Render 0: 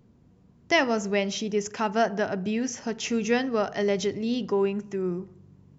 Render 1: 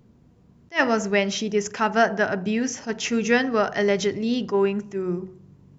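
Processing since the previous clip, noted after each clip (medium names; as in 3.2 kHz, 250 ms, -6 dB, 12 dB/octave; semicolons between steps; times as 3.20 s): de-hum 93.23 Hz, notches 11; dynamic bell 1.6 kHz, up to +6 dB, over -44 dBFS, Q 1.7; attacks held to a fixed rise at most 350 dB/s; trim +3.5 dB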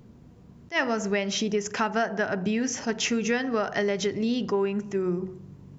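compression 5:1, threshold -28 dBFS, peak gain reduction 13 dB; trim +4.5 dB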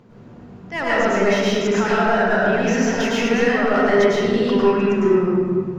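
in parallel at +1.5 dB: peak limiter -21 dBFS, peak gain reduction 8.5 dB; on the sum: overdrive pedal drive 15 dB, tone 1.6 kHz, clips at -9 dBFS; reverberation RT60 1.9 s, pre-delay 98 ms, DRR -7.5 dB; trim -6.5 dB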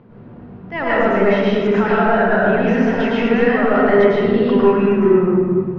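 distance through air 370 m; trim +4 dB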